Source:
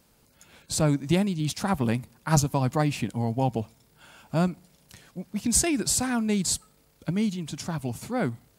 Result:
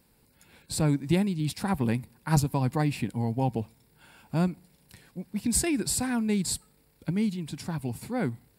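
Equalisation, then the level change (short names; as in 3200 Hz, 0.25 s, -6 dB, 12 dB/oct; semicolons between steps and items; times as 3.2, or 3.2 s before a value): thirty-one-band EQ 630 Hz -7 dB, 1250 Hz -7 dB, 3150 Hz -5 dB, 6300 Hz -12 dB; -1.0 dB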